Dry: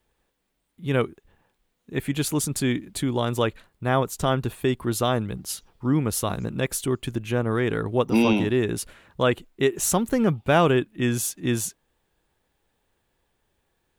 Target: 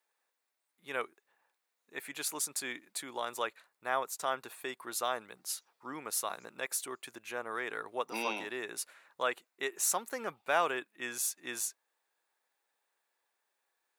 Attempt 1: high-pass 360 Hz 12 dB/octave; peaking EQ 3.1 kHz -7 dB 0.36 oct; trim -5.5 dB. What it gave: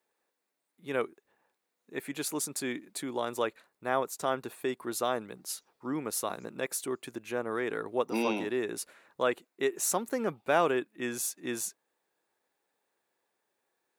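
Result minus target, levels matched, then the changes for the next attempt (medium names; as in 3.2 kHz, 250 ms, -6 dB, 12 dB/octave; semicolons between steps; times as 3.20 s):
500 Hz band +4.0 dB
change: high-pass 790 Hz 12 dB/octave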